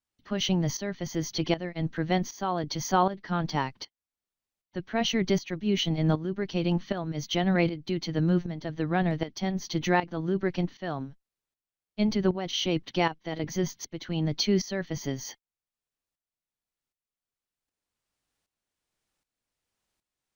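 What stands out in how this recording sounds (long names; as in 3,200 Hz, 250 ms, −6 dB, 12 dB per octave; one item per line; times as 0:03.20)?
tremolo saw up 1.3 Hz, depth 75%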